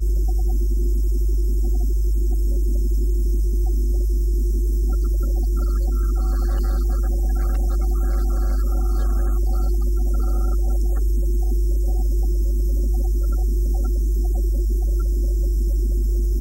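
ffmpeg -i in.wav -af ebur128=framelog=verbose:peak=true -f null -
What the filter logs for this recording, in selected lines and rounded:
Integrated loudness:
  I:         -22.7 LUFS
  Threshold: -32.7 LUFS
Loudness range:
  LRA:         0.1 LU
  Threshold: -42.7 LUFS
  LRA low:   -22.8 LUFS
  LRA high:  -22.7 LUFS
True peak:
  Peak:      -12.5 dBFS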